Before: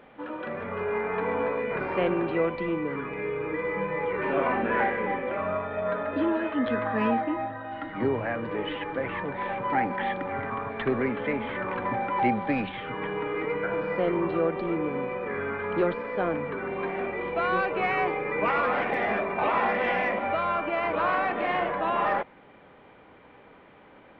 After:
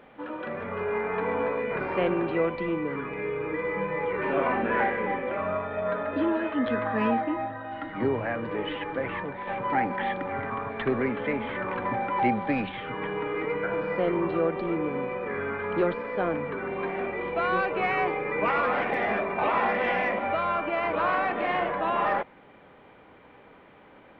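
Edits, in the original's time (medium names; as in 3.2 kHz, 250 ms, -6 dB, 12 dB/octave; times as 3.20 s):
9.15–9.47 s: fade out, to -6.5 dB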